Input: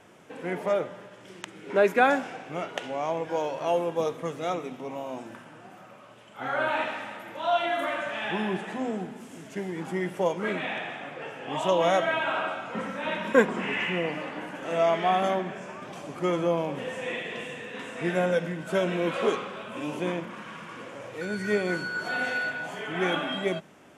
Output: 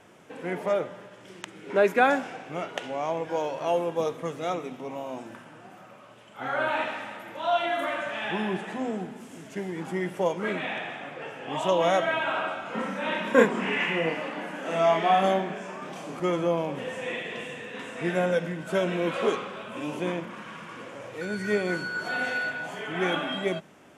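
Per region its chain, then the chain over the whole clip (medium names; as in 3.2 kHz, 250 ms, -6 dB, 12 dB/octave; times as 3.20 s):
12.63–16.20 s: high-pass 140 Hz 24 dB/octave + doubling 31 ms -2.5 dB
whole clip: none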